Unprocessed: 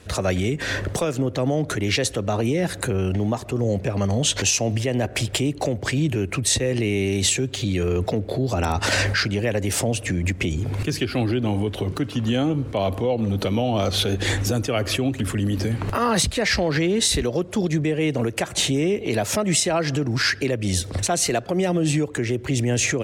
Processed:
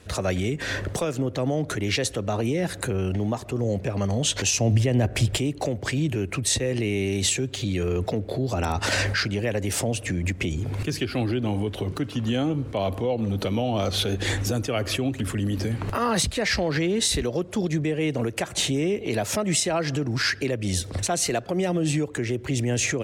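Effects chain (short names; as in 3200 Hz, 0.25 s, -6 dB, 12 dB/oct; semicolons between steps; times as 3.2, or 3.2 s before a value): 4.53–5.38 low shelf 190 Hz +10.5 dB; gain -3 dB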